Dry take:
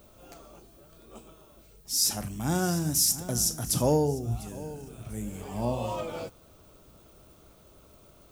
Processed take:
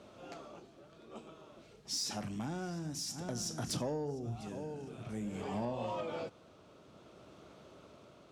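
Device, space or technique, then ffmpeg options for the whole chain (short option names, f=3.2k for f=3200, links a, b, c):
AM radio: -af "highpass=140,lowpass=4.5k,acompressor=threshold=-36dB:ratio=6,asoftclip=type=tanh:threshold=-30dB,tremolo=f=0.53:d=0.35,volume=3dB"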